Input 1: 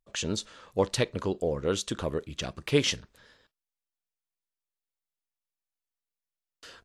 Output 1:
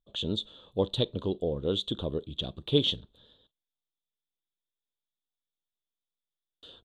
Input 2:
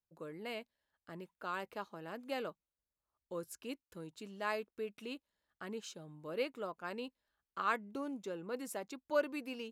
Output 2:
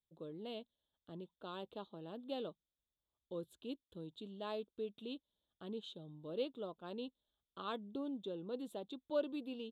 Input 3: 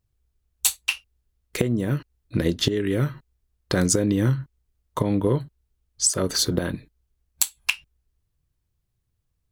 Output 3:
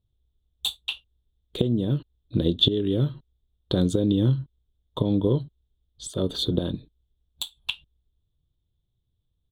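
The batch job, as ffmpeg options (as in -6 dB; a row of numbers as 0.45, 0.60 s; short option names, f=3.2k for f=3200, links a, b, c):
-af "firequalizer=gain_entry='entry(330,0);entry(2100,-22);entry(3500,9);entry(5100,-24);entry(7600,-17)':delay=0.05:min_phase=1"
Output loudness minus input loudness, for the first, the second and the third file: -0.5, -3.5, -1.5 LU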